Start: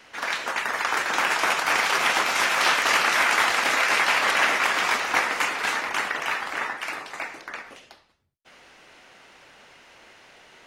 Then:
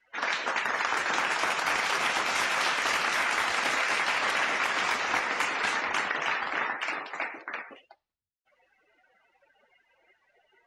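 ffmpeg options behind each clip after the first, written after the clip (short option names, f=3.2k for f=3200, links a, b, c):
-af "afftdn=nr=28:nf=-43,lowshelf=f=96:g=10.5,acompressor=threshold=-24dB:ratio=6"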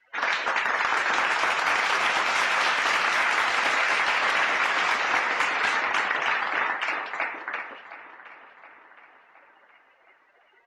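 -filter_complex "[0:a]asplit=2[a][b];[b]highpass=f=720:p=1,volume=7dB,asoftclip=type=tanh:threshold=-11.5dB[c];[a][c]amix=inputs=2:normalize=0,lowpass=f=3k:p=1,volume=-6dB,asplit=2[d][e];[e]adelay=718,lowpass=f=3.6k:p=1,volume=-15dB,asplit=2[f][g];[g]adelay=718,lowpass=f=3.6k:p=1,volume=0.54,asplit=2[h][i];[i]adelay=718,lowpass=f=3.6k:p=1,volume=0.54,asplit=2[j][k];[k]adelay=718,lowpass=f=3.6k:p=1,volume=0.54,asplit=2[l][m];[m]adelay=718,lowpass=f=3.6k:p=1,volume=0.54[n];[d][f][h][j][l][n]amix=inputs=6:normalize=0,volume=2.5dB"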